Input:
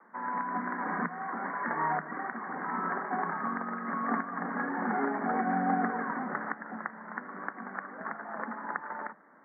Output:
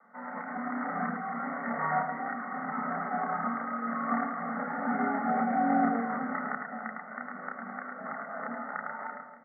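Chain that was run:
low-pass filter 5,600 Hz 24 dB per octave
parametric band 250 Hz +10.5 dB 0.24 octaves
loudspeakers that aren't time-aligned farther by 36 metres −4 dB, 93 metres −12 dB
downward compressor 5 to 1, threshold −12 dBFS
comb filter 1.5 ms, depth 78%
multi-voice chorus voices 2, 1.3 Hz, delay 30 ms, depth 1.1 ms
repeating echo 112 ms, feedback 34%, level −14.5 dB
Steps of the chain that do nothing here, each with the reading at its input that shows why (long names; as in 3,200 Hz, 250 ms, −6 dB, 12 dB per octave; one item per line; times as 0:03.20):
low-pass filter 5,600 Hz: nothing at its input above 2,200 Hz
downward compressor, threshold −12 dBFS: peak of its input −13.5 dBFS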